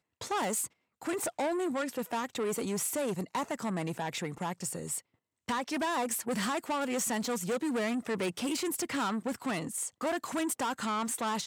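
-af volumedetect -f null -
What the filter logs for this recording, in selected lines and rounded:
mean_volume: -33.6 dB
max_volume: -23.6 dB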